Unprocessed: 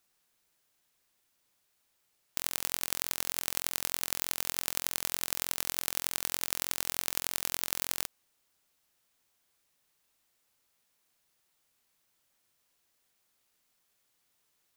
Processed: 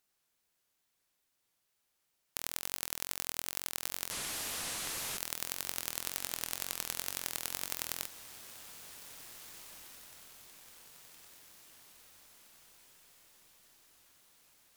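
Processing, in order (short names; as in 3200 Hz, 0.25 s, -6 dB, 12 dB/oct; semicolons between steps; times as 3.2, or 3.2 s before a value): 4.11–5.18 delta modulation 64 kbps, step -27 dBFS; wow and flutter 120 cents; diffused feedback echo 1.914 s, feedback 53%, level -12.5 dB; gain -4.5 dB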